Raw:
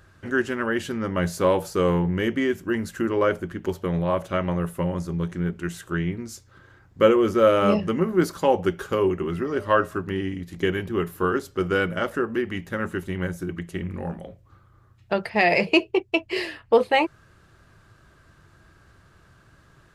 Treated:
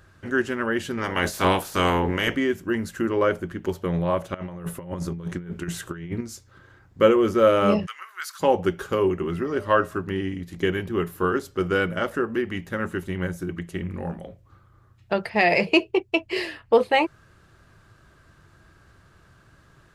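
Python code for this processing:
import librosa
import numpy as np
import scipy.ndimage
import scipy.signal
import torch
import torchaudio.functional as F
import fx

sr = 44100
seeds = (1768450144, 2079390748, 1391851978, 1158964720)

y = fx.spec_clip(x, sr, under_db=20, at=(0.97, 2.35), fade=0.02)
y = fx.over_compress(y, sr, threshold_db=-30.0, ratio=-0.5, at=(4.34, 6.21))
y = fx.highpass(y, sr, hz=1300.0, slope=24, at=(7.85, 8.39), fade=0.02)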